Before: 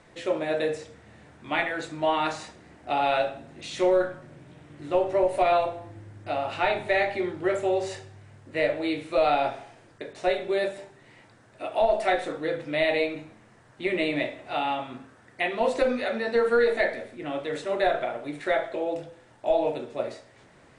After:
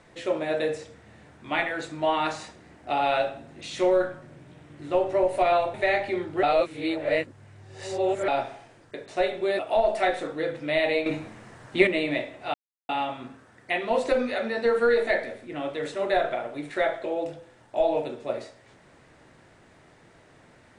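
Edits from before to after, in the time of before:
5.74–6.81 s: delete
7.50–9.35 s: reverse
10.66–11.64 s: delete
13.11–13.92 s: gain +9 dB
14.59 s: insert silence 0.35 s

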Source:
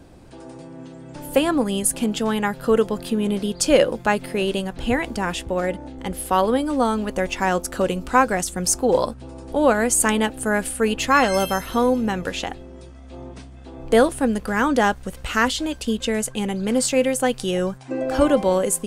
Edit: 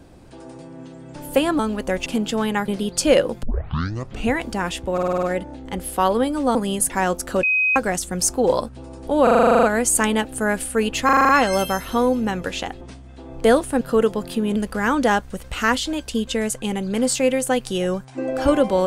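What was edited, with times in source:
1.59–1.94 s: swap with 6.88–7.35 s
2.56–3.31 s: move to 14.29 s
4.06 s: tape start 0.87 s
5.56 s: stutter 0.05 s, 7 plays
7.88–8.21 s: bleep 2.52 kHz -15.5 dBFS
9.68 s: stutter 0.04 s, 11 plays
11.10 s: stutter 0.04 s, 7 plays
12.62–13.29 s: delete

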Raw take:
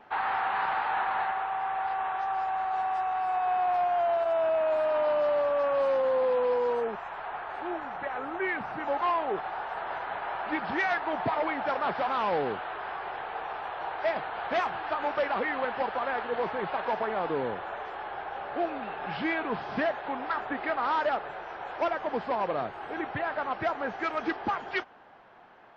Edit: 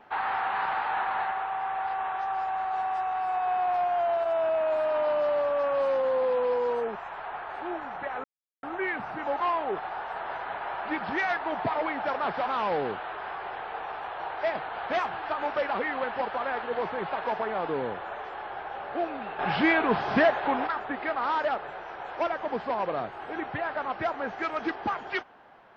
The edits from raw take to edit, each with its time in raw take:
8.24 s: insert silence 0.39 s
19.00–20.28 s: gain +7 dB

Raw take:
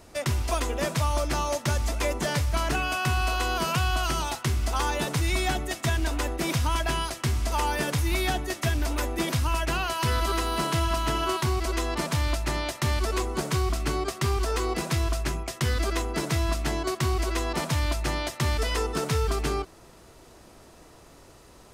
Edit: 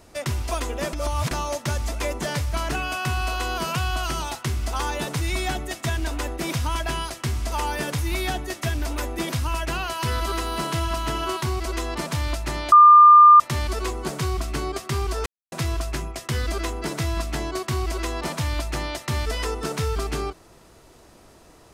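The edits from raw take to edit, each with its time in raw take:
0.93–1.31 s: reverse
12.72 s: add tone 1.2 kHz -6.5 dBFS 0.68 s
14.58–14.84 s: mute

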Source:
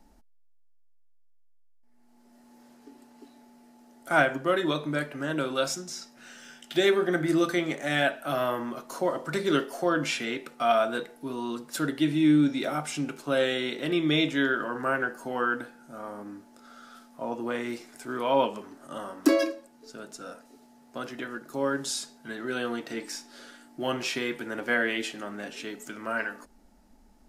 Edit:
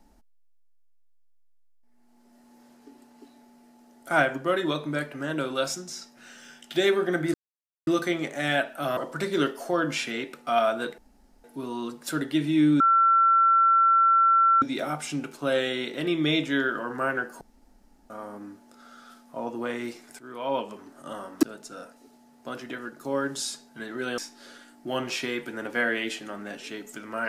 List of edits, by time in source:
7.34 s: insert silence 0.53 s
8.44–9.10 s: delete
11.11 s: insert room tone 0.46 s
12.47 s: add tone 1.35 kHz -16 dBFS 1.82 s
15.26–15.95 s: room tone
18.04–18.78 s: fade in, from -12.5 dB
19.28–19.92 s: delete
22.67–23.11 s: delete

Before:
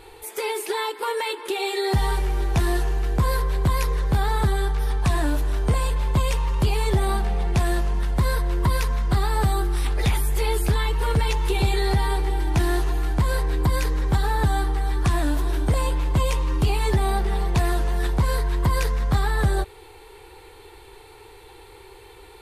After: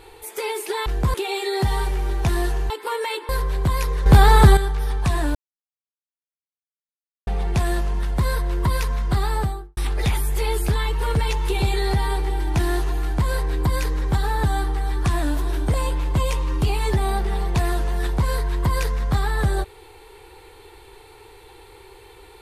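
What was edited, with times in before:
0.86–1.45 s: swap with 3.01–3.29 s
4.06–4.57 s: gain +10 dB
5.35–7.27 s: mute
9.29–9.77 s: studio fade out

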